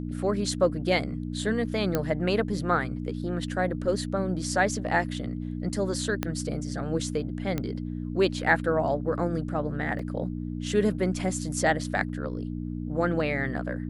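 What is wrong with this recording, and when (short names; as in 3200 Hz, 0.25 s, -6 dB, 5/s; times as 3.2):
hum 60 Hz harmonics 5 -33 dBFS
1.95 pop -11 dBFS
6.23 pop -12 dBFS
7.58 pop -15 dBFS
9.99 gap 3.5 ms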